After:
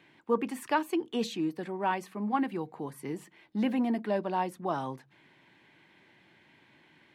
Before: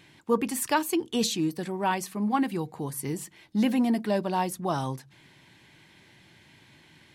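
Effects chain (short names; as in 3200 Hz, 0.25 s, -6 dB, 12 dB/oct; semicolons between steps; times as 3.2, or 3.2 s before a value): three-band isolator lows -12 dB, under 190 Hz, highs -14 dB, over 3100 Hz; gain -2.5 dB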